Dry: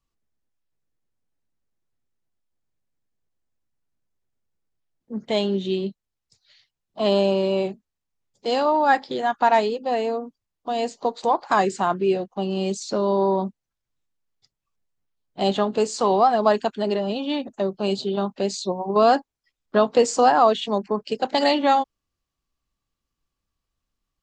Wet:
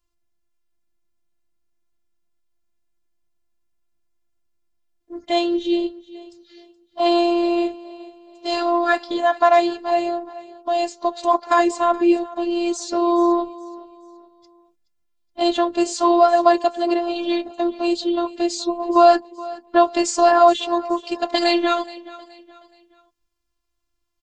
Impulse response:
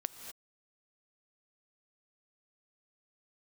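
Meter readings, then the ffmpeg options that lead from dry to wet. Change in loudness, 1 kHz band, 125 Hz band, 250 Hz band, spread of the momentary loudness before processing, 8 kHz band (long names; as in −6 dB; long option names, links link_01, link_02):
+3.0 dB, +2.5 dB, below −20 dB, +5.5 dB, 10 LU, +3.5 dB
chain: -af "aecho=1:1:423|846|1269:0.112|0.0404|0.0145,afftfilt=real='hypot(re,im)*cos(PI*b)':imag='0':win_size=512:overlap=0.75,volume=6.5dB"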